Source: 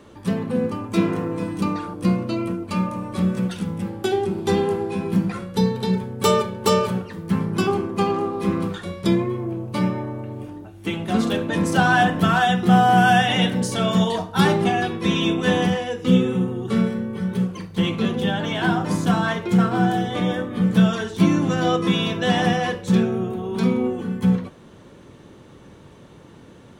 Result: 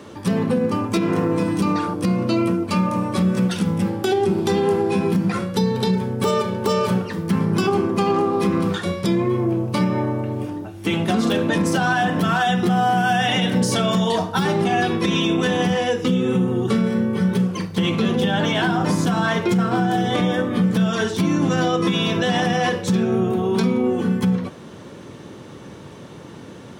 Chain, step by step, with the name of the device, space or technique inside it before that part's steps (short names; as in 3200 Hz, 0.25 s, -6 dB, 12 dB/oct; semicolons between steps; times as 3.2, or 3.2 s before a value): broadcast voice chain (HPF 92 Hz; de-esser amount 55%; compressor, threshold -21 dBFS, peak gain reduction 11 dB; bell 5300 Hz +4 dB 0.34 oct; limiter -18 dBFS, peak gain reduction 7 dB); gain +7.5 dB